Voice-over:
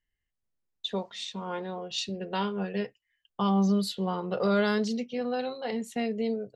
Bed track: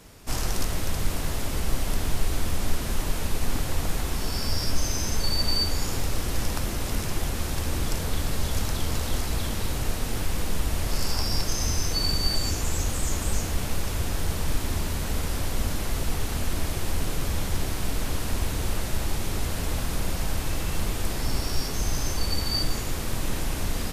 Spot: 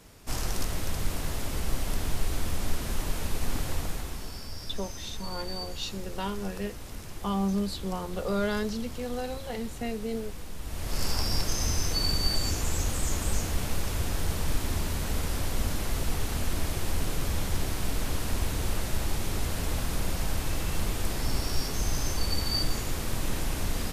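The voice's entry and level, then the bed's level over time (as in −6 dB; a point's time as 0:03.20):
3.85 s, −3.5 dB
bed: 0:03.72 −3.5 dB
0:04.49 −13 dB
0:10.57 −13 dB
0:11.03 −2 dB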